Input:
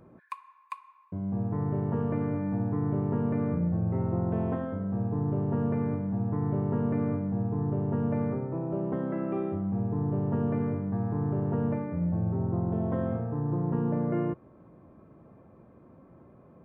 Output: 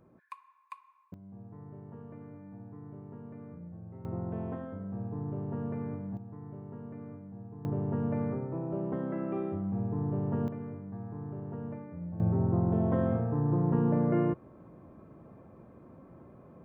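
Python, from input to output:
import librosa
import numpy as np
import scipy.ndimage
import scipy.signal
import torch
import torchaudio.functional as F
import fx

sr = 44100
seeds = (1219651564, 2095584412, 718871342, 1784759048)

y = fx.gain(x, sr, db=fx.steps((0.0, -7.0), (1.14, -18.0), (4.05, -7.5), (6.17, -16.0), (7.65, -3.0), (10.48, -11.0), (12.2, 1.5)))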